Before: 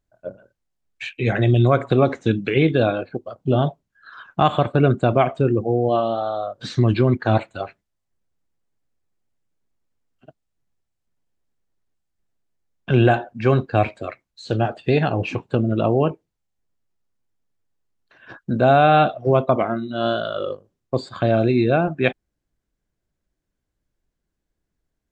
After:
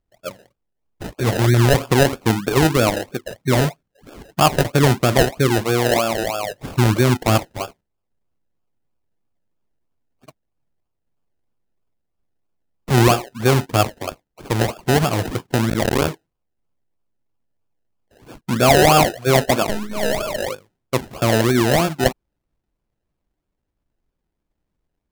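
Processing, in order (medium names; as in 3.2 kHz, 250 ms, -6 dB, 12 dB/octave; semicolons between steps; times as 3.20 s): 15.68–16.08 s: cycle switcher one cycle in 2, muted; 19.69–20.38 s: monotone LPC vocoder at 8 kHz 210 Hz; decimation with a swept rate 31×, swing 60% 3.1 Hz; trim +1.5 dB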